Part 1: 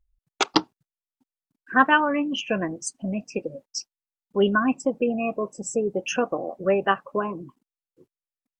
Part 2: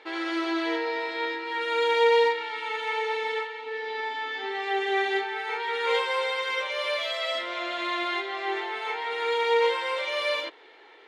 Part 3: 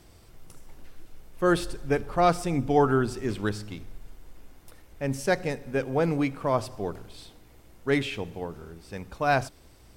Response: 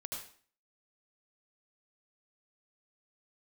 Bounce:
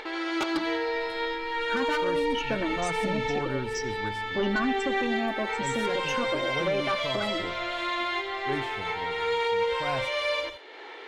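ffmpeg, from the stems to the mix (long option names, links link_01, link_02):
-filter_complex "[0:a]deesser=0.45,aecho=1:1:3.4:0.8,asoftclip=type=tanh:threshold=-18.5dB,volume=-2.5dB,asplit=2[link_01][link_02];[link_02]volume=-20dB[link_03];[1:a]equalizer=frequency=6400:width_type=o:width=1.4:gain=5,acompressor=mode=upward:threshold=-31dB:ratio=2.5,volume=-2.5dB,asplit=2[link_04][link_05];[link_05]volume=-7dB[link_06];[2:a]lowshelf=frequency=140:gain=6.5,adelay=600,volume=-10dB[link_07];[link_01][link_04]amix=inputs=2:normalize=0,highshelf=frequency=4300:gain=-7.5,alimiter=limit=-19dB:level=0:latency=1:release=115,volume=0dB[link_08];[3:a]atrim=start_sample=2205[link_09];[link_03][link_06]amix=inputs=2:normalize=0[link_10];[link_10][link_09]afir=irnorm=-1:irlink=0[link_11];[link_07][link_08][link_11]amix=inputs=3:normalize=0,alimiter=limit=-18.5dB:level=0:latency=1:release=81"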